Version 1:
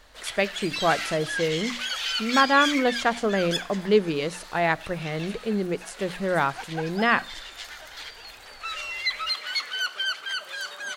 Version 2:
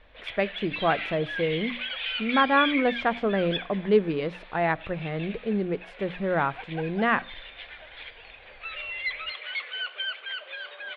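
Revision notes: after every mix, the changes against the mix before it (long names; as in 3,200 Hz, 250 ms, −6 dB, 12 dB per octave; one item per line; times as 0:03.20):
background: add loudspeaker in its box 470–3,600 Hz, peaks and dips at 510 Hz +6 dB, 890 Hz −4 dB, 1,300 Hz −7 dB, 2,400 Hz +8 dB, 3,500 Hz +8 dB
master: add high-frequency loss of the air 380 metres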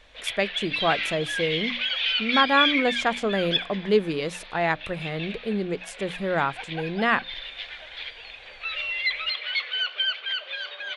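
speech: send off
master: remove high-frequency loss of the air 380 metres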